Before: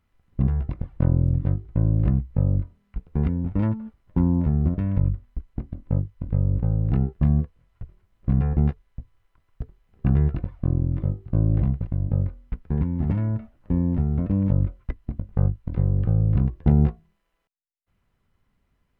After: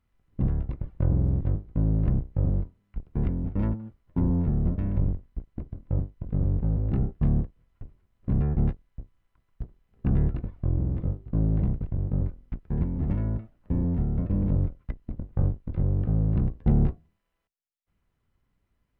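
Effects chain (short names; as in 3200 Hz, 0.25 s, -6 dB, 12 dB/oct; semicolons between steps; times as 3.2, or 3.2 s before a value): octaver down 1 oct, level -1 dB; gain -5.5 dB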